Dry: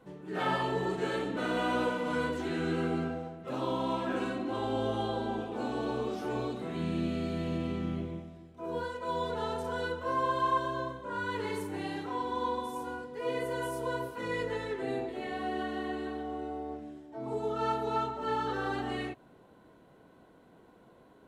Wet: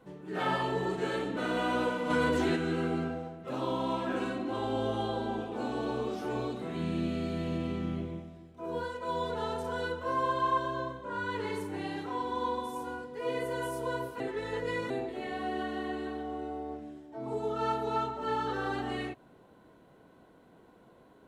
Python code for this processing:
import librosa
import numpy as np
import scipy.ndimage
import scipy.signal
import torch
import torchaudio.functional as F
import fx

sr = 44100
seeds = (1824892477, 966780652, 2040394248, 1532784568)

y = fx.env_flatten(x, sr, amount_pct=70, at=(2.09, 2.55), fade=0.02)
y = fx.high_shelf(y, sr, hz=9000.0, db=-6.0, at=(10.33, 11.98))
y = fx.edit(y, sr, fx.reverse_span(start_s=14.2, length_s=0.7), tone=tone)